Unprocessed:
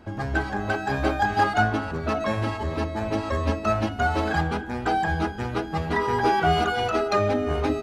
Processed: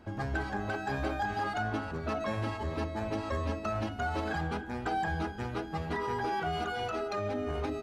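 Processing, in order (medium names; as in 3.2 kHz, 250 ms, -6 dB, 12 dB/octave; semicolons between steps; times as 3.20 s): peak limiter -16.5 dBFS, peak gain reduction 7.5 dB; gain riding 2 s; trim -7.5 dB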